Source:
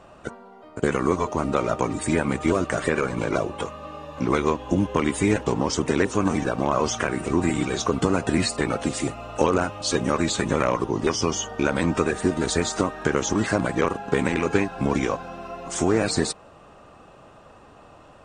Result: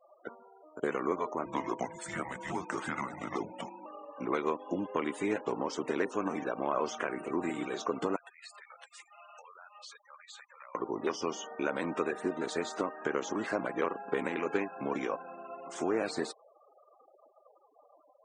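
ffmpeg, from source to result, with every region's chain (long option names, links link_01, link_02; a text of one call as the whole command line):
ffmpeg -i in.wav -filter_complex "[0:a]asettb=1/sr,asplit=3[link_01][link_02][link_03];[link_01]atrim=end=1.454[link_04];[link_02]atrim=start=1.45:end=3.86,asetpts=PTS-STARTPTS,afade=type=in:duration=0.004:curve=qsin,afade=type=out:start_time=2.406:duration=0.004:curve=qsin,highshelf=frequency=4600:gain=7,afreqshift=-270[link_05];[link_03]atrim=start=3.856[link_06];[link_04][link_05]acrossfade=duration=0.004:curve1=hsin:curve2=qsin[link_07];[link_07][link_06]acrossfade=duration=0.004:curve1=qsin:curve2=hsin,asettb=1/sr,asplit=3[link_08][link_09][link_10];[link_08]atrim=end=8.164[link_11];[link_09]atrim=start=8.16:end=10.75,asetpts=PTS-STARTPTS,afade=type=in:duration=0.004:curve=qsin,afade=type=out:start_time=2.586:duration=0.004:curve=qsin,acompressor=threshold=-30dB:ratio=6:attack=3.2:release=140:knee=1:detection=peak,highpass=1200[link_12];[link_10]atrim=start=10.746[link_13];[link_11][link_12]acrossfade=duration=0.004:curve1=hsin:curve2=qsin[link_14];[link_14][link_13]acrossfade=duration=0.004:curve1=qsin:curve2=hsin,highpass=310,afftfilt=real='re*gte(hypot(re,im),0.0126)':imag='im*gte(hypot(re,im),0.0126)':win_size=1024:overlap=0.75,lowpass=frequency=2400:poles=1,volume=-7.5dB" out.wav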